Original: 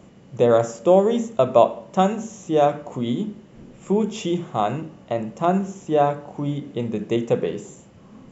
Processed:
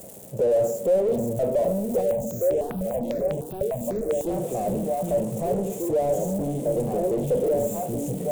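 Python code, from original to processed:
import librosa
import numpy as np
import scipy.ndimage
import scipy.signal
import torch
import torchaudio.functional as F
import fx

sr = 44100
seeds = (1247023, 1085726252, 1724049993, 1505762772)

y = x + 0.5 * 10.0 ** (-14.5 / 20.0) * np.diff(np.sign(x), prepend=np.sign(x[:1]))
y = scipy.signal.sosfilt(scipy.signal.butter(2, 44.0, 'highpass', fs=sr, output='sos'), y)
y = fx.low_shelf(y, sr, hz=480.0, db=-5.5)
y = fx.echo_stepped(y, sr, ms=773, hz=150.0, octaves=1.4, feedback_pct=70, wet_db=0.0)
y = np.clip(10.0 ** (33.0 / 20.0) * y, -1.0, 1.0) / 10.0 ** (33.0 / 20.0)
y = fx.curve_eq(y, sr, hz=(330.0, 550.0, 1200.0, 2500.0, 5100.0, 8100.0), db=(0, 10, -19, -17, -18, -5))
y = fx.phaser_held(y, sr, hz=10.0, low_hz=260.0, high_hz=4500.0, at=(2.01, 4.27))
y = F.gain(torch.from_numpy(y), 7.5).numpy()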